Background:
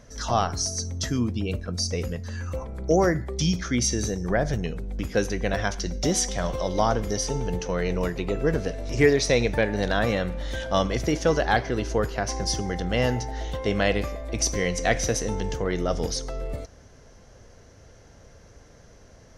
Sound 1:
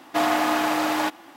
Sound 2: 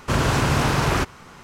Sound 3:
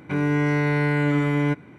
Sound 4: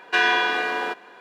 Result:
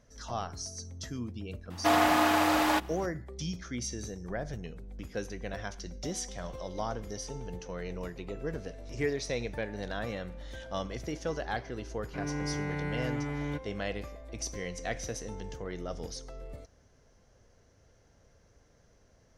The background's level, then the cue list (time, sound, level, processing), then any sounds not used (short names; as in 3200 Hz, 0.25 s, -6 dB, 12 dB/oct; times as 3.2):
background -12.5 dB
1.7 add 1 -2.5 dB
12.04 add 3 -13.5 dB
not used: 2, 4